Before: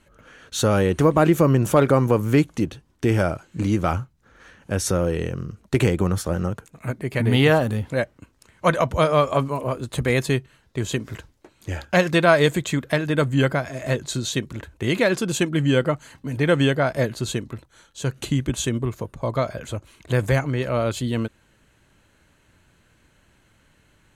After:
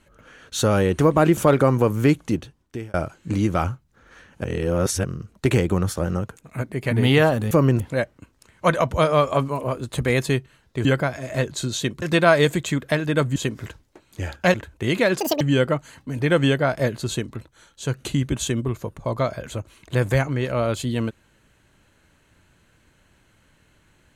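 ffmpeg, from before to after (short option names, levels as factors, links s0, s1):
-filter_complex "[0:a]asplit=13[s0][s1][s2][s3][s4][s5][s6][s7][s8][s9][s10][s11][s12];[s0]atrim=end=1.372[s13];[s1]atrim=start=1.658:end=3.23,asetpts=PTS-STARTPTS,afade=t=out:st=0.992:d=0.58[s14];[s2]atrim=start=3.23:end=4.732,asetpts=PTS-STARTPTS,afade=t=in:d=0.004:c=hsin[s15];[s3]atrim=start=4.728:end=5.332,asetpts=PTS-STARTPTS,areverse[s16];[s4]atrim=start=5.328:end=7.802[s17];[s5]atrim=start=1.368:end=1.662[s18];[s6]atrim=start=7.798:end=10.852[s19];[s7]atrim=start=13.368:end=14.542[s20];[s8]atrim=start=12.028:end=13.372[s21];[s9]atrim=start=10.848:end=12.032[s22];[s10]atrim=start=14.538:end=15.204[s23];[s11]atrim=start=15.2:end=15.58,asetpts=PTS-STARTPTS,asetrate=80703,aresample=44100,atrim=end_sample=9157,asetpts=PTS-STARTPTS[s24];[s12]atrim=start=15.576[s25];[s14][s15]concat=n=2:v=0:a=1[s26];[s13][s26]acrossfade=d=0.004:c1=hsin:c2=hsin[s27];[s27][s16]acrossfade=d=0.004:c1=hsin:c2=hsin[s28];[s28][s17]acrossfade=d=0.004:c1=hsin:c2=hsin[s29];[s29][s18]acrossfade=d=0.004:c1=hsin:c2=hsin[s30];[s30][s19]acrossfade=d=0.004:c1=hsin:c2=hsin[s31];[s31][s20]acrossfade=d=0.004:c1=hsin:c2=hsin[s32];[s32][s21]acrossfade=d=0.004:c1=hsin:c2=hsin[s33];[s33][s22]acrossfade=d=0.004:c1=hsin:c2=hsin[s34];[s34][s23]acrossfade=d=0.004:c1=hsin:c2=hsin[s35];[s35][s24]acrossfade=d=0.004:c1=hsin:c2=hsin[s36];[s36][s25]acrossfade=d=0.004:c1=hsin:c2=hsin"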